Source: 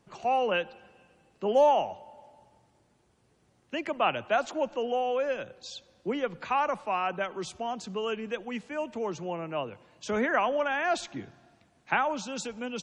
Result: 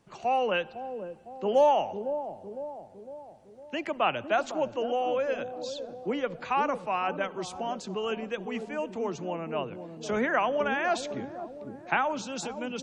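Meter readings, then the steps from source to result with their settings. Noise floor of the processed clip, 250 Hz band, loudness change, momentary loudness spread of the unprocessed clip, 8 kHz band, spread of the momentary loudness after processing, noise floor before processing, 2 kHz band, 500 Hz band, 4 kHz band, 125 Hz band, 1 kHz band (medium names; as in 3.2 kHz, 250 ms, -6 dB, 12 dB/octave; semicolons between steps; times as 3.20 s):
-50 dBFS, +1.0 dB, -0.5 dB, 12 LU, 0.0 dB, 13 LU, -68 dBFS, 0.0 dB, +0.5 dB, 0.0 dB, +1.5 dB, 0.0 dB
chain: feedback echo behind a low-pass 506 ms, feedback 51%, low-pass 510 Hz, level -5.5 dB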